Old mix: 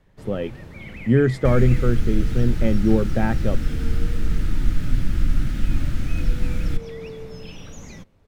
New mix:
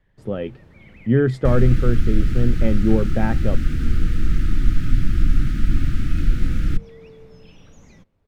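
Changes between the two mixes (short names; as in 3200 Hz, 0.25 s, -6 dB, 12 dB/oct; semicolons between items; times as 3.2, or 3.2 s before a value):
first sound -8.5 dB; second sound +3.0 dB; master: add high shelf 4600 Hz -6 dB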